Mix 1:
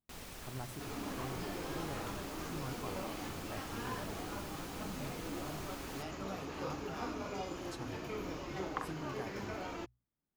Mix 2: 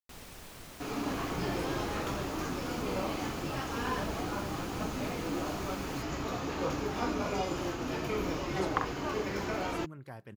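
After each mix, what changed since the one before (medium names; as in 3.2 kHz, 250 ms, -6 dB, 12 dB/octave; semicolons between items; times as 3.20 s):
speech: entry +0.90 s; second sound +8.0 dB; master: remove hum notches 60/120 Hz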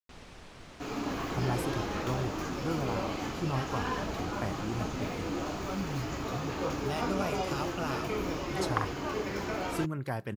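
speech +11.5 dB; first sound: add distance through air 89 m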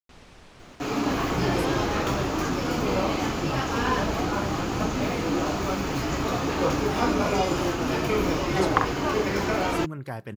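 second sound +9.0 dB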